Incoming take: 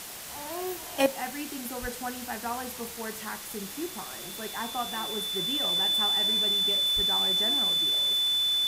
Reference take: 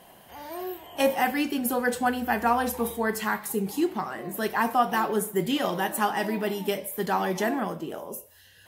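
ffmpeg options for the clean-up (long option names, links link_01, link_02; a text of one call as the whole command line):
ffmpeg -i in.wav -filter_complex "[0:a]bandreject=frequency=3500:width=30,asplit=3[link_01][link_02][link_03];[link_01]afade=type=out:start_time=1.81:duration=0.02[link_04];[link_02]highpass=frequency=140:width=0.5412,highpass=frequency=140:width=1.3066,afade=type=in:start_time=1.81:duration=0.02,afade=type=out:start_time=1.93:duration=0.02[link_05];[link_03]afade=type=in:start_time=1.93:duration=0.02[link_06];[link_04][link_05][link_06]amix=inputs=3:normalize=0,asplit=3[link_07][link_08][link_09];[link_07]afade=type=out:start_time=6.95:duration=0.02[link_10];[link_08]highpass=frequency=140:width=0.5412,highpass=frequency=140:width=1.3066,afade=type=in:start_time=6.95:duration=0.02,afade=type=out:start_time=7.07:duration=0.02[link_11];[link_09]afade=type=in:start_time=7.07:duration=0.02[link_12];[link_10][link_11][link_12]amix=inputs=3:normalize=0,afwtdn=0.01,asetnsamples=nb_out_samples=441:pad=0,asendcmd='1.06 volume volume 10.5dB',volume=0dB" out.wav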